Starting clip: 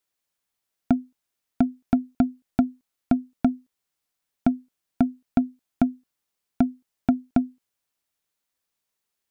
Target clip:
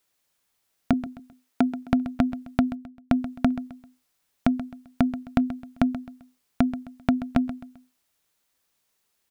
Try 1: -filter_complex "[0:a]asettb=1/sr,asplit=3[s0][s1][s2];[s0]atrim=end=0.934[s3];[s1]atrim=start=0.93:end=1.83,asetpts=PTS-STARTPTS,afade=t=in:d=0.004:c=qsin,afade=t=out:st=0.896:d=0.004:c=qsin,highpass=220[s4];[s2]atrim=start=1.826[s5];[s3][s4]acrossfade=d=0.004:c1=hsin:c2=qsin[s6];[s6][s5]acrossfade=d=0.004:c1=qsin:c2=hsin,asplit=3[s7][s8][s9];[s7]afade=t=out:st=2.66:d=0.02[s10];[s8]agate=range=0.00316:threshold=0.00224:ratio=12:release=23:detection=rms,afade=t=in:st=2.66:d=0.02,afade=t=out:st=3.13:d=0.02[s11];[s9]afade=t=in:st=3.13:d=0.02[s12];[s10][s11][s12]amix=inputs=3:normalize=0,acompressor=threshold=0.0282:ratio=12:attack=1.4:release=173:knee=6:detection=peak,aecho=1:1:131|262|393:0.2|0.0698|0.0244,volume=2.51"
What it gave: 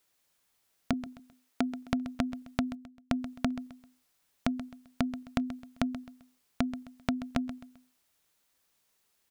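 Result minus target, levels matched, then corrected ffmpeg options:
compression: peak gain reduction +9 dB
-filter_complex "[0:a]asettb=1/sr,asplit=3[s0][s1][s2];[s0]atrim=end=0.934[s3];[s1]atrim=start=0.93:end=1.83,asetpts=PTS-STARTPTS,afade=t=in:d=0.004:c=qsin,afade=t=out:st=0.896:d=0.004:c=qsin,highpass=220[s4];[s2]atrim=start=1.826[s5];[s3][s4]acrossfade=d=0.004:c1=hsin:c2=qsin[s6];[s6][s5]acrossfade=d=0.004:c1=qsin:c2=hsin,asplit=3[s7][s8][s9];[s7]afade=t=out:st=2.66:d=0.02[s10];[s8]agate=range=0.00316:threshold=0.00224:ratio=12:release=23:detection=rms,afade=t=in:st=2.66:d=0.02,afade=t=out:st=3.13:d=0.02[s11];[s9]afade=t=in:st=3.13:d=0.02[s12];[s10][s11][s12]amix=inputs=3:normalize=0,acompressor=threshold=0.0891:ratio=12:attack=1.4:release=173:knee=6:detection=peak,aecho=1:1:131|262|393:0.2|0.0698|0.0244,volume=2.51"

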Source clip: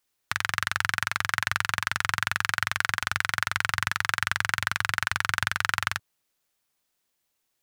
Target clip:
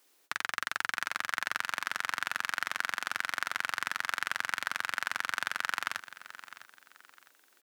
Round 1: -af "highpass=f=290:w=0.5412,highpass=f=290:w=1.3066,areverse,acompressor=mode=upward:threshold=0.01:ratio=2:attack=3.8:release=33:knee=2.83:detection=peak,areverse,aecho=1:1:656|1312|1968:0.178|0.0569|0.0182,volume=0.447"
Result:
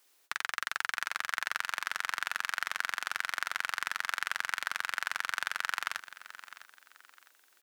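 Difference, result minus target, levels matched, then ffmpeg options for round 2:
500 Hz band -2.5 dB
-af "highpass=f=290:w=0.5412,highpass=f=290:w=1.3066,lowshelf=f=390:g=11,areverse,acompressor=mode=upward:threshold=0.01:ratio=2:attack=3.8:release=33:knee=2.83:detection=peak,areverse,aecho=1:1:656|1312|1968:0.178|0.0569|0.0182,volume=0.447"

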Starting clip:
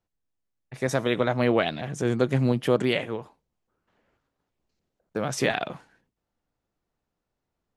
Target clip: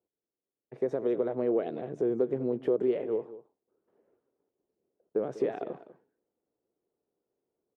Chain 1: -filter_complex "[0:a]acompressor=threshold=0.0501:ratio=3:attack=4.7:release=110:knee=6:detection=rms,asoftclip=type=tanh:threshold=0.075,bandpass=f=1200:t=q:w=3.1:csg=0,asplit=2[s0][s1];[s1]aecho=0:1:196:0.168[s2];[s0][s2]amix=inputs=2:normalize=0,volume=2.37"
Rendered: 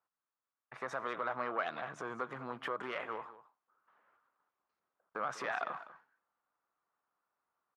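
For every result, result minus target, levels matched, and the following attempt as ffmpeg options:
1 kHz band +15.5 dB; saturation: distortion +17 dB
-filter_complex "[0:a]acompressor=threshold=0.0501:ratio=3:attack=4.7:release=110:knee=6:detection=rms,asoftclip=type=tanh:threshold=0.075,bandpass=f=410:t=q:w=3.1:csg=0,asplit=2[s0][s1];[s1]aecho=0:1:196:0.168[s2];[s0][s2]amix=inputs=2:normalize=0,volume=2.37"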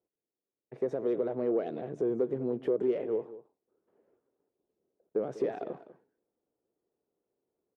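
saturation: distortion +17 dB
-filter_complex "[0:a]acompressor=threshold=0.0501:ratio=3:attack=4.7:release=110:knee=6:detection=rms,asoftclip=type=tanh:threshold=0.266,bandpass=f=410:t=q:w=3.1:csg=0,asplit=2[s0][s1];[s1]aecho=0:1:196:0.168[s2];[s0][s2]amix=inputs=2:normalize=0,volume=2.37"

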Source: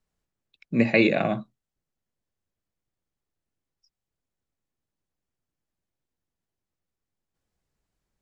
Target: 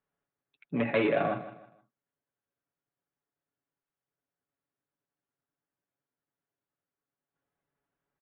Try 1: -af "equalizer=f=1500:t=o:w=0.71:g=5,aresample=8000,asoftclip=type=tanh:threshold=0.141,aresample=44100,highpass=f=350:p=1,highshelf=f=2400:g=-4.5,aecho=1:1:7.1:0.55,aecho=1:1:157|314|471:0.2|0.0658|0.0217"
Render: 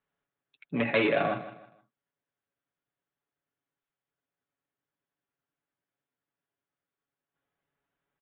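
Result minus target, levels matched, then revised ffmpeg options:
4 kHz band +5.0 dB
-af "equalizer=f=1500:t=o:w=0.71:g=5,aresample=8000,asoftclip=type=tanh:threshold=0.141,aresample=44100,highpass=f=350:p=1,highshelf=f=2400:g=-14.5,aecho=1:1:7.1:0.55,aecho=1:1:157|314|471:0.2|0.0658|0.0217"

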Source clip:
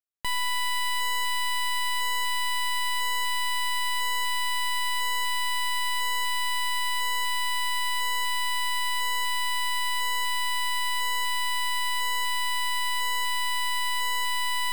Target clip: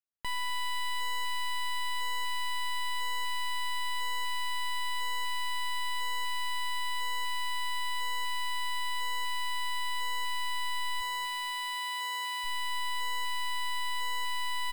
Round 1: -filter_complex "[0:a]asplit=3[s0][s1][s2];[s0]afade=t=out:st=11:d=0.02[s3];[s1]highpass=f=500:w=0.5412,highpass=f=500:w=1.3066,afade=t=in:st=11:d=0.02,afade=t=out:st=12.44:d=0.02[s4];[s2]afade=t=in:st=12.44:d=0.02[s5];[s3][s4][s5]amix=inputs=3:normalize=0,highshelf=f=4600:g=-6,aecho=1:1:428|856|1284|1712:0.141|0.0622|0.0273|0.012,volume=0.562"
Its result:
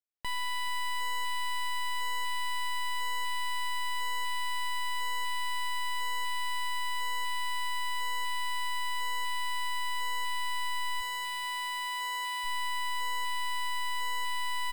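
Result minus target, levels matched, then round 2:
echo 176 ms late
-filter_complex "[0:a]asplit=3[s0][s1][s2];[s0]afade=t=out:st=11:d=0.02[s3];[s1]highpass=f=500:w=0.5412,highpass=f=500:w=1.3066,afade=t=in:st=11:d=0.02,afade=t=out:st=12.44:d=0.02[s4];[s2]afade=t=in:st=12.44:d=0.02[s5];[s3][s4][s5]amix=inputs=3:normalize=0,highshelf=f=4600:g=-6,aecho=1:1:252|504|756|1008:0.141|0.0622|0.0273|0.012,volume=0.562"

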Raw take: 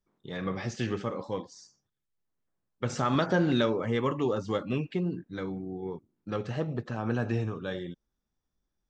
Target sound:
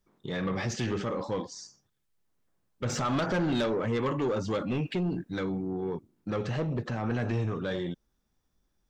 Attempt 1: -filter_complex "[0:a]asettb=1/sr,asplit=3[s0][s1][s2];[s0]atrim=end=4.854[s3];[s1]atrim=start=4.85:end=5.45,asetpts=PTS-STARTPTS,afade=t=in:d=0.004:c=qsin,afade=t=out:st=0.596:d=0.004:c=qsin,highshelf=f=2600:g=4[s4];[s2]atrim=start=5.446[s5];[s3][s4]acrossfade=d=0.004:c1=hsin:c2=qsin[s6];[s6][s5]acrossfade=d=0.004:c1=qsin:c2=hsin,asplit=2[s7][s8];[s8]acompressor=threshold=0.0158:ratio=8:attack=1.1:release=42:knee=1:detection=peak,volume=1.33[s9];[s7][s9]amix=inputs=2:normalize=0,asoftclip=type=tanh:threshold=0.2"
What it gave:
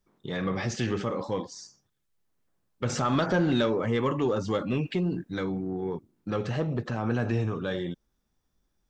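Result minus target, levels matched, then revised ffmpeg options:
saturation: distortion -11 dB
-filter_complex "[0:a]asettb=1/sr,asplit=3[s0][s1][s2];[s0]atrim=end=4.854[s3];[s1]atrim=start=4.85:end=5.45,asetpts=PTS-STARTPTS,afade=t=in:d=0.004:c=qsin,afade=t=out:st=0.596:d=0.004:c=qsin,highshelf=f=2600:g=4[s4];[s2]atrim=start=5.446[s5];[s3][s4]acrossfade=d=0.004:c1=hsin:c2=qsin[s6];[s6][s5]acrossfade=d=0.004:c1=qsin:c2=hsin,asplit=2[s7][s8];[s8]acompressor=threshold=0.0158:ratio=8:attack=1.1:release=42:knee=1:detection=peak,volume=1.33[s9];[s7][s9]amix=inputs=2:normalize=0,asoftclip=type=tanh:threshold=0.0708"

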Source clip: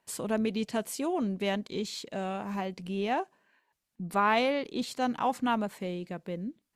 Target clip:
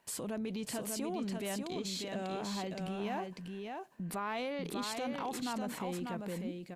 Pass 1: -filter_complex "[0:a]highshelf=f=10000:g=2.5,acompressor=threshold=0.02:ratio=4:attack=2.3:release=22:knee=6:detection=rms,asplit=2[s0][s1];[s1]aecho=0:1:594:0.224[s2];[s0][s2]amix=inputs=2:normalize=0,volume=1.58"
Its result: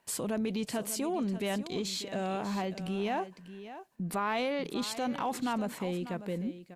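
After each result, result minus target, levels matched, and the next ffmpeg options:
compression: peak gain reduction -6 dB; echo-to-direct -8.5 dB
-filter_complex "[0:a]highshelf=f=10000:g=2.5,acompressor=threshold=0.00794:ratio=4:attack=2.3:release=22:knee=6:detection=rms,asplit=2[s0][s1];[s1]aecho=0:1:594:0.224[s2];[s0][s2]amix=inputs=2:normalize=0,volume=1.58"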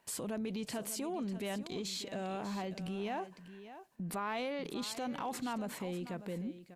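echo-to-direct -8.5 dB
-filter_complex "[0:a]highshelf=f=10000:g=2.5,acompressor=threshold=0.00794:ratio=4:attack=2.3:release=22:knee=6:detection=rms,asplit=2[s0][s1];[s1]aecho=0:1:594:0.596[s2];[s0][s2]amix=inputs=2:normalize=0,volume=1.58"

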